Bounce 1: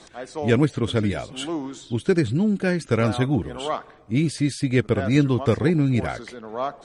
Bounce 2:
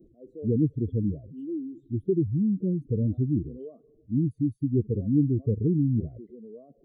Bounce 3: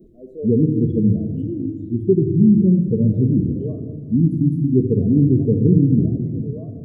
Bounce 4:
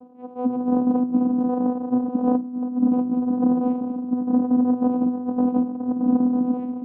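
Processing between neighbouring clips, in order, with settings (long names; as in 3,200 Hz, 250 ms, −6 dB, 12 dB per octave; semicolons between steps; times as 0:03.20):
expanding power law on the bin magnitudes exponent 2.2; inverse Chebyshev band-stop filter 780–9,000 Hz, stop band 40 dB; level −3.5 dB
rectangular room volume 2,800 cubic metres, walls mixed, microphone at 1.4 metres; level +7.5 dB
compressor whose output falls as the input rises −19 dBFS, ratio −0.5; channel vocoder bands 4, saw 249 Hz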